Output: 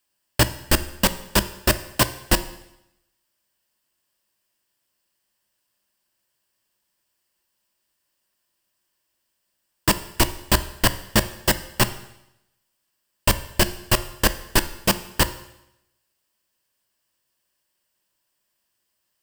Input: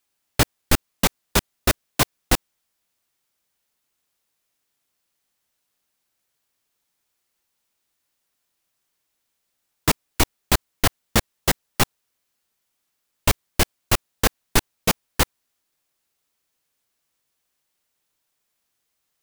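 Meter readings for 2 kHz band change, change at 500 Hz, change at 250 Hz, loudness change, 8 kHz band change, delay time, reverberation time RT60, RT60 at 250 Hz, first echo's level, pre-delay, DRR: +1.0 dB, +1.0 dB, +1.0 dB, +1.0 dB, +0.5 dB, no echo audible, 0.85 s, 0.85 s, no echo audible, 11 ms, 12.0 dB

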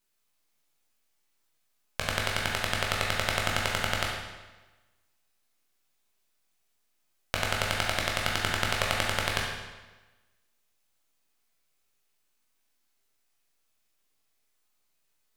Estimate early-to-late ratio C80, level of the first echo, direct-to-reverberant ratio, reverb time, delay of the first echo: 3.5 dB, no echo audible, −3.0 dB, 1.2 s, no echo audible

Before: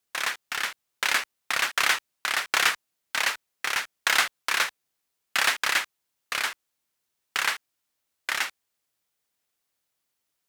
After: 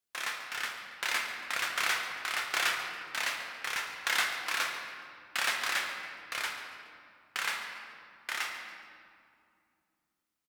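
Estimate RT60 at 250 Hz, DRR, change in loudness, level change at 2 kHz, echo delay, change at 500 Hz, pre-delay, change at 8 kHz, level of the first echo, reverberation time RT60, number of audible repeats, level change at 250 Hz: 3.6 s, 1.0 dB, −6.5 dB, −6.0 dB, 140 ms, −5.5 dB, 6 ms, −7.5 dB, −14.5 dB, 2.4 s, 1, −5.0 dB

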